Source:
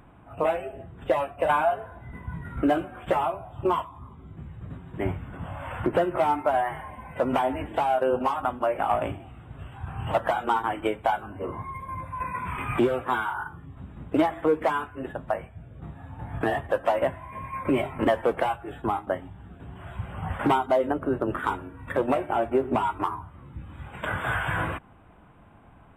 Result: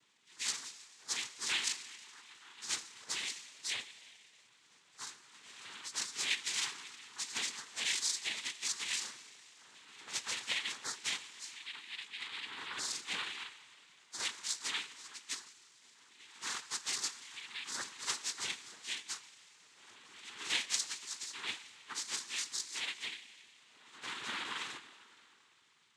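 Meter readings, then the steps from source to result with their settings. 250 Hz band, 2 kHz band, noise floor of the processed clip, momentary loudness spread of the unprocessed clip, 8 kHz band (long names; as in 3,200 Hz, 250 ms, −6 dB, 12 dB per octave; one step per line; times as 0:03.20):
−30.0 dB, −7.5 dB, −66 dBFS, 18 LU, can't be measured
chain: frequency axis turned over on the octave scale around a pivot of 1,700 Hz
four-comb reverb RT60 2.9 s, combs from 27 ms, DRR 13 dB
cochlear-implant simulation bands 6
level −7.5 dB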